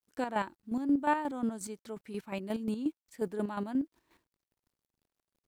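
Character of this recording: a quantiser's noise floor 12-bit, dither none; chopped level 5.6 Hz, depth 60%, duty 35%

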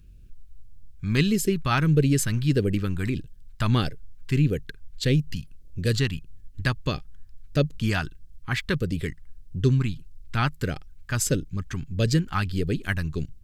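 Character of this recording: phasing stages 2, 1.6 Hz, lowest notch 470–1000 Hz

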